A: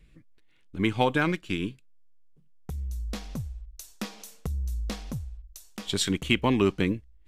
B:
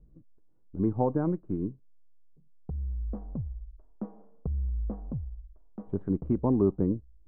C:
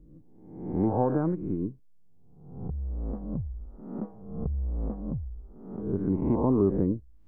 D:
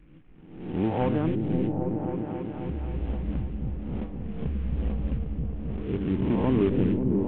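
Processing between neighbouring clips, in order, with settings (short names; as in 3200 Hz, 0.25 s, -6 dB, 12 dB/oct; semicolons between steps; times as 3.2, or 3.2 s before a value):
Bessel low-pass 610 Hz, order 6
spectral swells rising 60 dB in 0.83 s
CVSD 16 kbps; repeats that get brighter 0.268 s, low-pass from 200 Hz, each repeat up 1 oct, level 0 dB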